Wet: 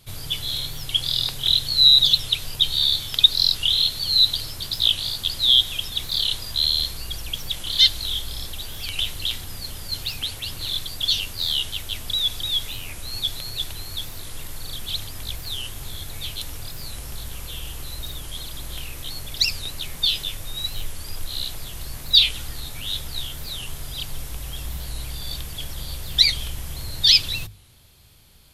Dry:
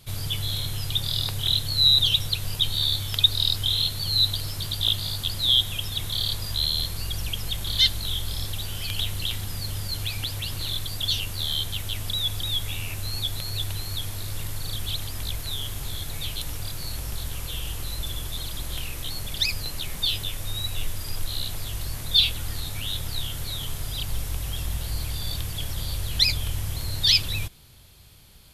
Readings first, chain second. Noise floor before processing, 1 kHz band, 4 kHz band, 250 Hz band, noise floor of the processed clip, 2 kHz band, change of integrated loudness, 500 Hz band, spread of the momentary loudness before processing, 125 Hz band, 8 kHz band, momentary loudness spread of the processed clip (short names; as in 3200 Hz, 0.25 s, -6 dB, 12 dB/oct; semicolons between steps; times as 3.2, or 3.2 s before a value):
-35 dBFS, -0.5 dB, +4.5 dB, -2.0 dB, -37 dBFS, +1.5 dB, +5.0 dB, -1.0 dB, 13 LU, -6.0 dB, +0.5 dB, 18 LU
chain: dynamic EQ 4200 Hz, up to +6 dB, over -34 dBFS, Q 0.8; notches 50/100/150/200 Hz; record warp 45 rpm, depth 160 cents; gain -1 dB